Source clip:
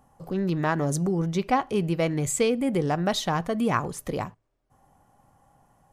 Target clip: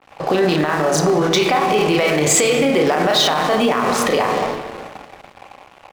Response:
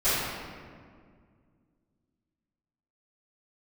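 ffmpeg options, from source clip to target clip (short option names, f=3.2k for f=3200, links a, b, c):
-filter_complex "[0:a]highpass=45,acrossover=split=420 4600:gain=0.141 1 0.0708[a][b][c];[a][b][c]amix=inputs=3:normalize=0,asplit=2[d][e];[e]adelay=33,volume=-2.5dB[f];[d][f]amix=inputs=2:normalize=0,acompressor=threshold=-38dB:ratio=10,asplit=2[g][h];[1:a]atrim=start_sample=2205[i];[h][i]afir=irnorm=-1:irlink=0,volume=-20dB[j];[g][j]amix=inputs=2:normalize=0,aeval=exprs='sgn(val(0))*max(abs(val(0))-0.00106,0)':c=same,dynaudnorm=f=220:g=13:m=7dB,asplit=2[k][l];[l]adelay=217,lowpass=f=2k:p=1,volume=-18.5dB,asplit=2[m][n];[n]adelay=217,lowpass=f=2k:p=1,volume=0.44,asplit=2[o][p];[p]adelay=217,lowpass=f=2k:p=1,volume=0.44,asplit=2[q][r];[r]adelay=217,lowpass=f=2k:p=1,volume=0.44[s];[k][m][o][q][s]amix=inputs=5:normalize=0,alimiter=level_in=34dB:limit=-1dB:release=50:level=0:latency=1,adynamicequalizer=threshold=0.0398:dfrequency=3500:dqfactor=0.7:tfrequency=3500:tqfactor=0.7:attack=5:release=100:ratio=0.375:range=3:mode=boostabove:tftype=highshelf,volume=-7dB"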